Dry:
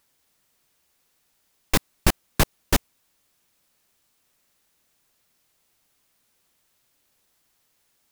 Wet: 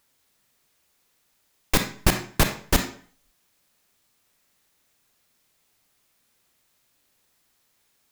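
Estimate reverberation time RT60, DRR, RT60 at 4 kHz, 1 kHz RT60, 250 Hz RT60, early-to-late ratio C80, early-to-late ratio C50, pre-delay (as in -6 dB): 0.45 s, 5.0 dB, 0.40 s, 0.50 s, 0.45 s, 12.5 dB, 8.0 dB, 30 ms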